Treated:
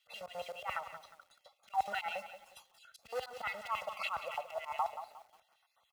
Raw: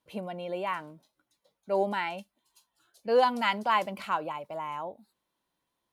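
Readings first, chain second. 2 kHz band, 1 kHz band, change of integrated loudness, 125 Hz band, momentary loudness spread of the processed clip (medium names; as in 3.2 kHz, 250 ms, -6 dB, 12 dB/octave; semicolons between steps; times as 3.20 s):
-6.5 dB, -8.0 dB, -9.5 dB, -18.0 dB, 21 LU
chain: random holes in the spectrogram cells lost 20%; bass shelf 120 Hz +6 dB; short-mantissa float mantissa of 2-bit; compression 4:1, threshold -43 dBFS, peak gain reduction 20.5 dB; LFO high-pass square 7.2 Hz 990–2700 Hz; tilt EQ -2.5 dB/octave; on a send: tape echo 63 ms, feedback 76%, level -19 dB, low-pass 1.6 kHz; on the sum: slow attack 106 ms; high-pass 53 Hz 24 dB/octave; comb 1.5 ms, depth 97%; bit-crushed delay 179 ms, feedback 35%, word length 11-bit, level -11 dB; trim +8.5 dB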